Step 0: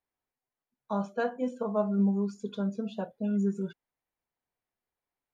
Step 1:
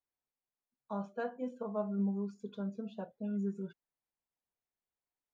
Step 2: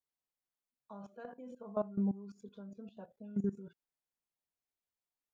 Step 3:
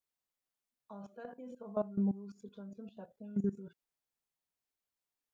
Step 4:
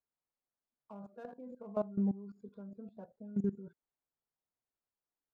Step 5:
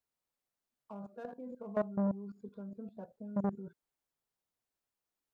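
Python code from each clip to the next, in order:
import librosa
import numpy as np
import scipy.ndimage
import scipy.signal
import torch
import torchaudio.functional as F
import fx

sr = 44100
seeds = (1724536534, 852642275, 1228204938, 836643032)

y1 = fx.high_shelf(x, sr, hz=4200.0, db=-8.5)
y1 = F.gain(torch.from_numpy(y1), -7.5).numpy()
y2 = fx.level_steps(y1, sr, step_db=17)
y2 = F.gain(torch.from_numpy(y2), 3.5).numpy()
y3 = fx.dynamic_eq(y2, sr, hz=1100.0, q=1.9, threshold_db=-57.0, ratio=4.0, max_db=-3)
y3 = F.gain(torch.from_numpy(y3), 1.0).numpy()
y4 = fx.wiener(y3, sr, points=15)
y5 = fx.transformer_sat(y4, sr, knee_hz=440.0)
y5 = F.gain(torch.from_numpy(y5), 3.0).numpy()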